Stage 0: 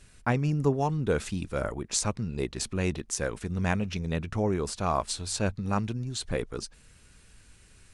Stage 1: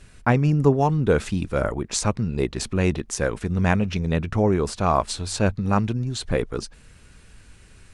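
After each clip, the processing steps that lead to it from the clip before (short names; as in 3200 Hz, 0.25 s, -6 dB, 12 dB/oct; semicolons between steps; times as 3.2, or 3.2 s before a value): high shelf 3800 Hz -7 dB; gain +7.5 dB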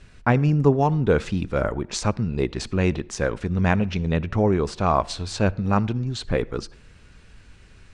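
LPF 5700 Hz 12 dB/oct; on a send at -23 dB: reverb RT60 0.65 s, pre-delay 56 ms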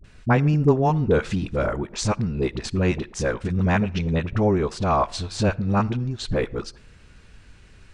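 dispersion highs, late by 43 ms, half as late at 520 Hz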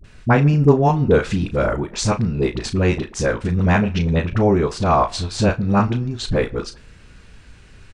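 doubler 35 ms -10 dB; gain +4 dB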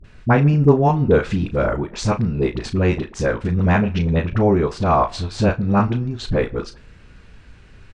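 LPF 3200 Hz 6 dB/oct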